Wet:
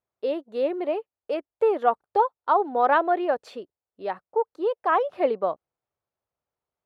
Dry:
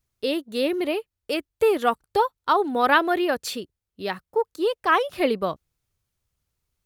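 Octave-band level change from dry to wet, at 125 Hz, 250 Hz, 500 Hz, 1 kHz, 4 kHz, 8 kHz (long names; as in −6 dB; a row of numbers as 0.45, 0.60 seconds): can't be measured, −6.0 dB, −0.5 dB, +0.5 dB, −14.0 dB, below −20 dB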